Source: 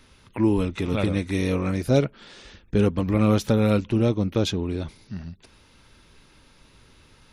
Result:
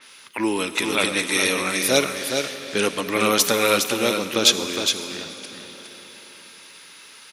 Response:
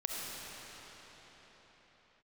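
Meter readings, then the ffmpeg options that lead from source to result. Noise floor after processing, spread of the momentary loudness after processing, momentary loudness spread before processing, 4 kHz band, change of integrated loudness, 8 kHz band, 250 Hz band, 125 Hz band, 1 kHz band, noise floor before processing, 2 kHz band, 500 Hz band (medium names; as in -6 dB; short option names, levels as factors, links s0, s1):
-46 dBFS, 18 LU, 15 LU, +15.5 dB, +3.0 dB, +19.5 dB, -4.0 dB, -14.0 dB, +8.0 dB, -56 dBFS, +13.0 dB, +2.0 dB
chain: -filter_complex "[0:a]highpass=300,equalizer=f=1900:t=o:w=2.4:g=8.5,crystalizer=i=4:c=0,aecho=1:1:411:0.501,asplit=2[s0][s1];[1:a]atrim=start_sample=2205,highshelf=f=7400:g=11[s2];[s1][s2]afir=irnorm=-1:irlink=0,volume=0.224[s3];[s0][s3]amix=inputs=2:normalize=0,adynamicequalizer=threshold=0.0355:dfrequency=4300:dqfactor=0.7:tfrequency=4300:tqfactor=0.7:attack=5:release=100:ratio=0.375:range=2:mode=boostabove:tftype=highshelf,volume=0.75"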